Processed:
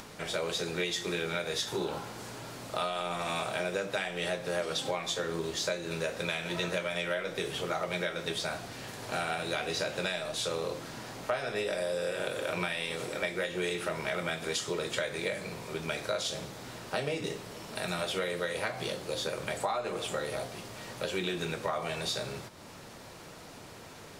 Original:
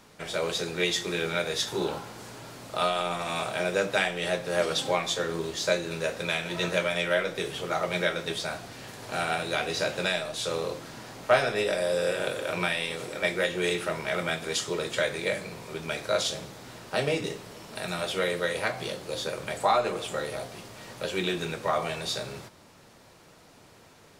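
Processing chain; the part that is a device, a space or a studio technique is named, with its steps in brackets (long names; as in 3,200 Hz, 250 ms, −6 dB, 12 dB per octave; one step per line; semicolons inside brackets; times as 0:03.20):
upward and downward compression (upward compression, threshold −40 dBFS; downward compressor, threshold −29 dBFS, peak gain reduction 13 dB)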